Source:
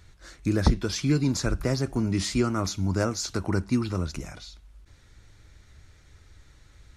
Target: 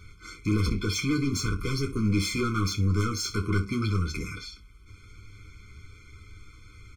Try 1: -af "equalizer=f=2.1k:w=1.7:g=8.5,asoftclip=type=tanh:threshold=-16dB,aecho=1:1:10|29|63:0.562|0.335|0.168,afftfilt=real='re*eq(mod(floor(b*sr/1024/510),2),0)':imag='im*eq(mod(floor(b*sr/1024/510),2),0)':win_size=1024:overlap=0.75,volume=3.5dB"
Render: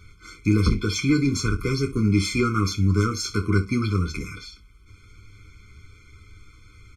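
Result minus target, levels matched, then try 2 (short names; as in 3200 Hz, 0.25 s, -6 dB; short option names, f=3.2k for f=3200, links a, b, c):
soft clip: distortion -10 dB
-af "equalizer=f=2.1k:w=1.7:g=8.5,asoftclip=type=tanh:threshold=-27dB,aecho=1:1:10|29|63:0.562|0.335|0.168,afftfilt=real='re*eq(mod(floor(b*sr/1024/510),2),0)':imag='im*eq(mod(floor(b*sr/1024/510),2),0)':win_size=1024:overlap=0.75,volume=3.5dB"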